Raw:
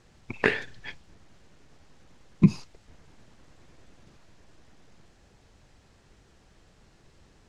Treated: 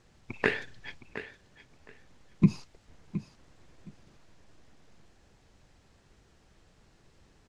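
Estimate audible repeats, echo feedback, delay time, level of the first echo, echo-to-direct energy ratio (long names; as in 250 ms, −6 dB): 2, 18%, 716 ms, −13.0 dB, −13.0 dB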